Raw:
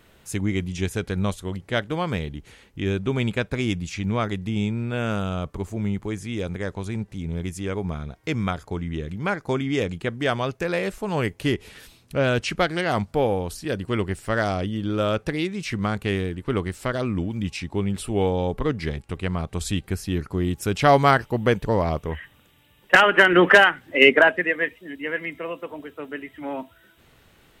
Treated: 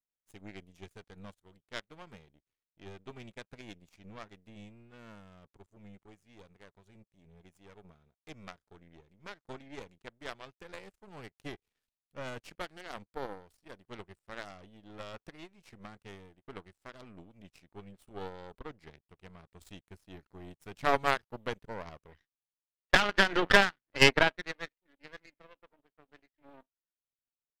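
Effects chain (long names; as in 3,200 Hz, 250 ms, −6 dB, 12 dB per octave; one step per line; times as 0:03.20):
gain on one half-wave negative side −7 dB
power curve on the samples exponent 2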